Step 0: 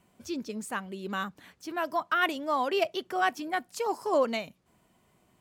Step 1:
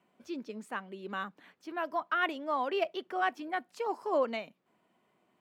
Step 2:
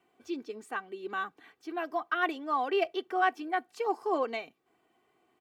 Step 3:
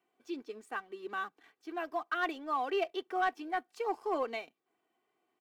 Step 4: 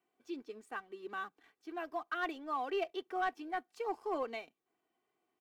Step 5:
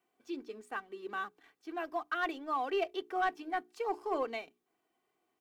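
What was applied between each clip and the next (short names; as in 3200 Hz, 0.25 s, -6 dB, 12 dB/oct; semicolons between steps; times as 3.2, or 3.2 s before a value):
three-band isolator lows -23 dB, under 180 Hz, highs -13 dB, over 3700 Hz; gain -3.5 dB
comb 2.6 ms, depth 67%
Bessel high-pass 200 Hz, order 2; sample leveller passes 1; gain -6.5 dB
low shelf 180 Hz +5.5 dB; gain -4 dB
notches 60/120/180/240/300/360/420 Hz; gain +3 dB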